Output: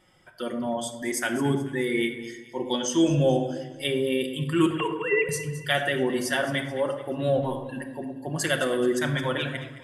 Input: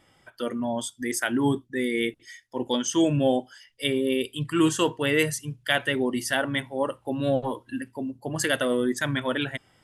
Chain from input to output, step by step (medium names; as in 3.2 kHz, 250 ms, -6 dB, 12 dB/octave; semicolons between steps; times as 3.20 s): 4.66–5.29 s: formants replaced by sine waves; echo whose repeats swap between lows and highs 108 ms, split 1.2 kHz, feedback 64%, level -10.5 dB; on a send at -4 dB: reverberation RT60 0.85 s, pre-delay 5 ms; on the sum: trim -2 dB